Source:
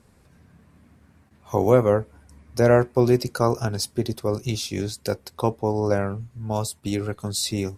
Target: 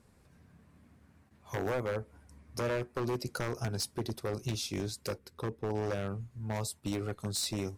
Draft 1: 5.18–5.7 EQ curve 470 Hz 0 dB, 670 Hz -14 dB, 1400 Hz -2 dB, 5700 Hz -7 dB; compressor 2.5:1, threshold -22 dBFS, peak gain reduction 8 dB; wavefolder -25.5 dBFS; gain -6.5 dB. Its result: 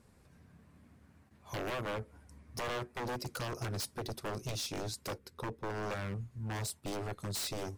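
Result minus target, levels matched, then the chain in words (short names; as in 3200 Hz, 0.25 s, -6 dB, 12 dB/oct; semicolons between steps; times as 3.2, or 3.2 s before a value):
wavefolder: distortion +11 dB
5.18–5.7 EQ curve 470 Hz 0 dB, 670 Hz -14 dB, 1400 Hz -2 dB, 5700 Hz -7 dB; compressor 2.5:1, threshold -22 dBFS, peak gain reduction 8 dB; wavefolder -19.5 dBFS; gain -6.5 dB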